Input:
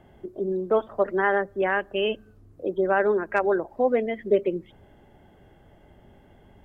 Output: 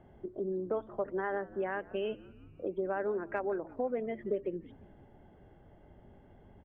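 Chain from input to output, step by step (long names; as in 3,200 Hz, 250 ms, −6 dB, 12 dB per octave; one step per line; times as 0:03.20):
low-pass filter 1,300 Hz 6 dB per octave
downward compressor 2.5 to 1, threshold −30 dBFS, peak gain reduction 10 dB
echo with shifted repeats 174 ms, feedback 59%, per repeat −80 Hz, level −20.5 dB
level −3.5 dB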